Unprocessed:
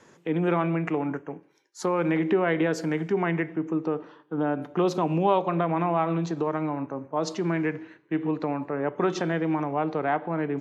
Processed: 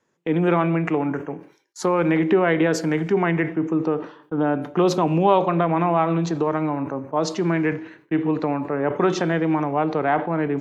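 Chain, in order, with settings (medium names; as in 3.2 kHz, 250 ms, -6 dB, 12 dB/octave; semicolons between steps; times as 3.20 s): gate with hold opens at -42 dBFS; decay stretcher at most 130 dB/s; trim +5 dB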